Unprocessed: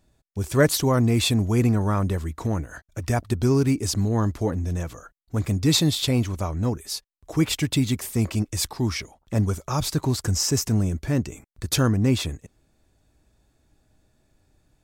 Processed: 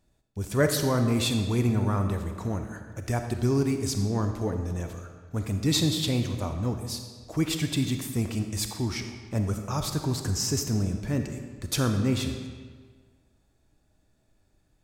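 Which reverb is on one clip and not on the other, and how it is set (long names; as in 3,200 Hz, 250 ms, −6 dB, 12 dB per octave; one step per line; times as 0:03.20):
comb and all-pass reverb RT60 1.6 s, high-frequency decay 0.8×, pre-delay 5 ms, DRR 5.5 dB
level −5 dB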